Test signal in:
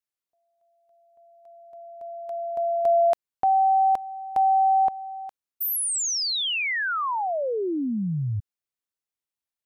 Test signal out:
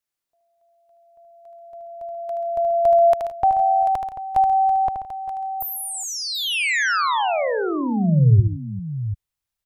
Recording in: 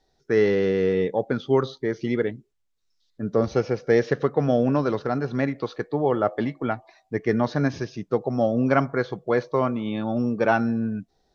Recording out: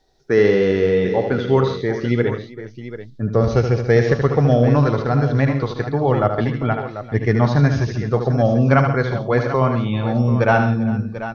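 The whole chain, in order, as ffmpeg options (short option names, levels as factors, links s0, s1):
-filter_complex "[0:a]asubboost=boost=6:cutoff=110,aecho=1:1:76|134|166|394|740:0.447|0.237|0.119|0.126|0.251,acrossover=split=2800[s0][s1];[s1]acompressor=threshold=0.0224:ratio=4:attack=1:release=60[s2];[s0][s2]amix=inputs=2:normalize=0,volume=1.78"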